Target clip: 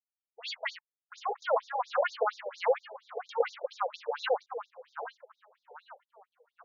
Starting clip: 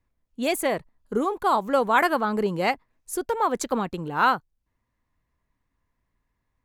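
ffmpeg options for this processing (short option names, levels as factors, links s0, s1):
-filter_complex "[0:a]bandreject=f=50:t=h:w=6,bandreject=f=100:t=h:w=6,bandreject=f=150:t=h:w=6,bandreject=f=200:t=h:w=6,afftfilt=real='re*lt(hypot(re,im),0.501)':imag='im*lt(hypot(re,im),0.501)':win_size=1024:overlap=0.75,anlmdn=0.158,equalizer=f=125:t=o:w=0.33:g=3,equalizer=f=200:t=o:w=0.33:g=12,equalizer=f=500:t=o:w=0.33:g=11,equalizer=f=5000:t=o:w=0.33:g=-9,equalizer=f=10000:t=o:w=0.33:g=8,acrossover=split=320[s0][s1];[s0]acompressor=threshold=0.0141:ratio=6[s2];[s2][s1]amix=inputs=2:normalize=0,aeval=exprs='val(0)*gte(abs(val(0)),0.0141)':c=same,asplit=2[s3][s4];[s4]adelay=794,lowpass=f=2400:p=1,volume=0.282,asplit=2[s5][s6];[s6]adelay=794,lowpass=f=2400:p=1,volume=0.45,asplit=2[s7][s8];[s8]adelay=794,lowpass=f=2400:p=1,volume=0.45,asplit=2[s9][s10];[s10]adelay=794,lowpass=f=2400:p=1,volume=0.45,asplit=2[s11][s12];[s12]adelay=794,lowpass=f=2400:p=1,volume=0.45[s13];[s3][s5][s7][s9][s11][s13]amix=inputs=6:normalize=0,afftfilt=real='re*between(b*sr/1024,580*pow(5100/580,0.5+0.5*sin(2*PI*4.3*pts/sr))/1.41,580*pow(5100/580,0.5+0.5*sin(2*PI*4.3*pts/sr))*1.41)':imag='im*between(b*sr/1024,580*pow(5100/580,0.5+0.5*sin(2*PI*4.3*pts/sr))/1.41,580*pow(5100/580,0.5+0.5*sin(2*PI*4.3*pts/sr))*1.41)':win_size=1024:overlap=0.75,volume=1.19"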